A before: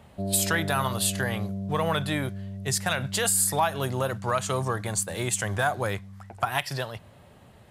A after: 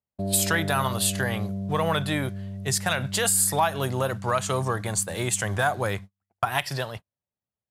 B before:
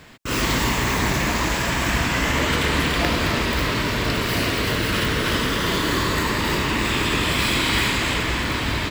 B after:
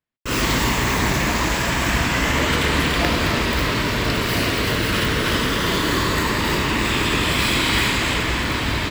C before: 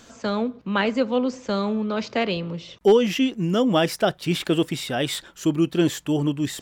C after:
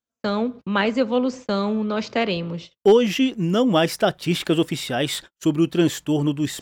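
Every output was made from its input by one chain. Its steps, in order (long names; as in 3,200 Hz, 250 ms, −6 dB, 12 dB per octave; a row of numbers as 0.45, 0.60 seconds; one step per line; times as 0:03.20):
noise gate −37 dBFS, range −45 dB
level +1.5 dB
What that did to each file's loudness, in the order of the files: +1.5, +1.5, +1.5 LU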